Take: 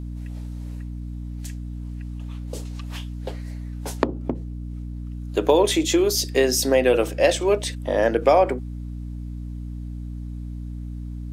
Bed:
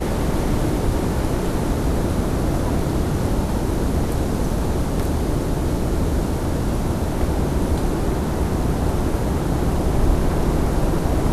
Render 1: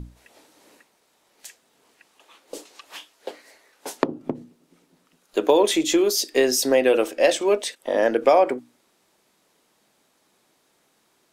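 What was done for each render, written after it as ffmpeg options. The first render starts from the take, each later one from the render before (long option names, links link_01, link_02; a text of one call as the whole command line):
ffmpeg -i in.wav -af "bandreject=frequency=60:width_type=h:width=6,bandreject=frequency=120:width_type=h:width=6,bandreject=frequency=180:width_type=h:width=6,bandreject=frequency=240:width_type=h:width=6,bandreject=frequency=300:width_type=h:width=6" out.wav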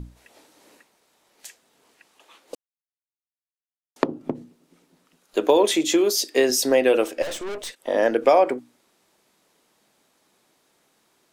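ffmpeg -i in.wav -filter_complex "[0:a]asettb=1/sr,asplit=3[link_01][link_02][link_03];[link_01]atrim=end=5.574[link_04];[link_02]atrim=start=5.57:end=6.5,asetpts=PTS-STARTPTS,afade=type=in:duration=0.004:curve=qsin,afade=type=out:start_time=0.926:duration=0.004:curve=qsin,highpass=110[link_05];[link_03]atrim=start=6.496[link_06];[link_04][link_05]acrossfade=duration=0.004:curve1=hsin:curve2=qsin[link_07];[link_07][link_06]acrossfade=duration=0.004:curve1=qsin:curve2=hsin,asettb=1/sr,asplit=3[link_08][link_09][link_10];[link_08]atrim=end=7.224[link_11];[link_09]atrim=start=7.22:end=7.78,asetpts=PTS-STARTPTS,afade=type=in:duration=0.004:curve=qsin,afade=type=out:start_time=0.556:duration=0.004:curve=qsin,aeval=exprs='(tanh(28.2*val(0)+0.5)-tanh(0.5))/28.2':channel_layout=same[link_12];[link_10]atrim=start=7.776[link_13];[link_11][link_12]acrossfade=duration=0.004:curve1=hsin:curve2=qsin[link_14];[link_14][link_13]acrossfade=duration=0.004:curve1=qsin:curve2=hsin,asplit=3[link_15][link_16][link_17];[link_15]atrim=end=2.55,asetpts=PTS-STARTPTS,afade=type=out:start_time=2.546:duration=0.004:curve=hsin[link_18];[link_16]atrim=start=2.55:end=3.96,asetpts=PTS-STARTPTS,volume=0[link_19];[link_17]atrim=start=3.96,asetpts=PTS-STARTPTS,afade=type=in:duration=0.004:curve=hsin[link_20];[link_18][link_19][link_20]concat=n=3:v=0:a=1" out.wav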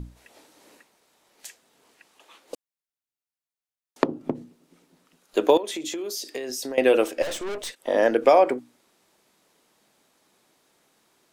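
ffmpeg -i in.wav -filter_complex "[0:a]asettb=1/sr,asplit=3[link_01][link_02][link_03];[link_01]atrim=end=5.574[link_04];[link_02]atrim=start=5.57:end=6.78,asetpts=PTS-STARTPTS,afade=type=in:duration=0.004:curve=qsin,afade=type=out:start_time=1.206:duration=0.004:curve=qsin,acompressor=threshold=-28dB:ratio=12:attack=3.2:release=140:knee=1:detection=peak[link_05];[link_03]atrim=start=6.776[link_06];[link_04][link_05]acrossfade=duration=0.004:curve1=hsin:curve2=qsin[link_07];[link_07][link_06]acrossfade=duration=0.004:curve1=qsin:curve2=hsin" out.wav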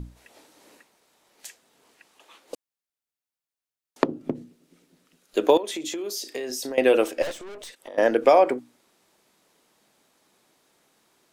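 ffmpeg -i in.wav -filter_complex "[0:a]asettb=1/sr,asplit=3[link_01][link_02][link_03];[link_01]atrim=end=4.054[link_04];[link_02]atrim=start=4.05:end=5.44,asetpts=PTS-STARTPTS,afade=type=in:duration=0.004:curve=qsin,afade=type=out:start_time=1.386:duration=0.004:curve=qsin,equalizer=frequency=920:width=1.5:gain=-6.5[link_05];[link_03]atrim=start=5.436[link_06];[link_04][link_05]acrossfade=duration=0.004:curve1=hsin:curve2=qsin[link_07];[link_07][link_06]acrossfade=duration=0.004:curve1=qsin:curve2=hsin,asettb=1/sr,asplit=3[link_08][link_09][link_10];[link_08]atrim=end=6.034[link_11];[link_09]atrim=start=6.03:end=6.7,asetpts=PTS-STARTPTS,afade=type=in:duration=0.004:curve=qsin,afade=type=out:start_time=0.666:duration=0.004:curve=qsin,asplit=2[link_12][link_13];[link_13]adelay=35,volume=-12dB[link_14];[link_12][link_14]amix=inputs=2:normalize=0,atrim=end_sample=29547[link_15];[link_10]atrim=start=6.696[link_16];[link_11][link_15]acrossfade=duration=0.004:curve1=hsin:curve2=qsin[link_17];[link_17][link_16]acrossfade=duration=0.004:curve1=qsin:curve2=hsin,asettb=1/sr,asplit=3[link_18][link_19][link_20];[link_18]atrim=end=7.314[link_21];[link_19]atrim=start=7.31:end=7.98,asetpts=PTS-STARTPTS,afade=type=in:duration=0.004:curve=qsin,afade=type=out:start_time=0.666:duration=0.004:curve=qsin,acompressor=threshold=-37dB:ratio=6:attack=3.2:release=140:knee=1:detection=peak[link_22];[link_20]atrim=start=7.976[link_23];[link_21][link_22]acrossfade=duration=0.004:curve1=hsin:curve2=qsin[link_24];[link_24][link_23]acrossfade=duration=0.004:curve1=qsin:curve2=hsin" out.wav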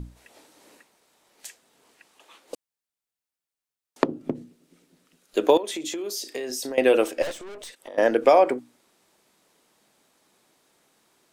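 ffmpeg -i in.wav -af "equalizer=frequency=8500:width=3.7:gain=2" out.wav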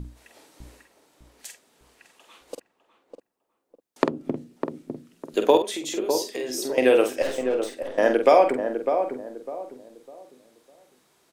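ffmpeg -i in.wav -filter_complex "[0:a]asplit=2[link_01][link_02];[link_02]adelay=47,volume=-7dB[link_03];[link_01][link_03]amix=inputs=2:normalize=0,asplit=2[link_04][link_05];[link_05]adelay=603,lowpass=frequency=920:poles=1,volume=-6dB,asplit=2[link_06][link_07];[link_07]adelay=603,lowpass=frequency=920:poles=1,volume=0.34,asplit=2[link_08][link_09];[link_09]adelay=603,lowpass=frequency=920:poles=1,volume=0.34,asplit=2[link_10][link_11];[link_11]adelay=603,lowpass=frequency=920:poles=1,volume=0.34[link_12];[link_06][link_08][link_10][link_12]amix=inputs=4:normalize=0[link_13];[link_04][link_13]amix=inputs=2:normalize=0" out.wav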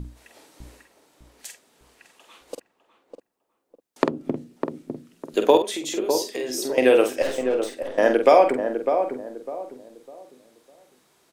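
ffmpeg -i in.wav -af "volume=1.5dB,alimiter=limit=-2dB:level=0:latency=1" out.wav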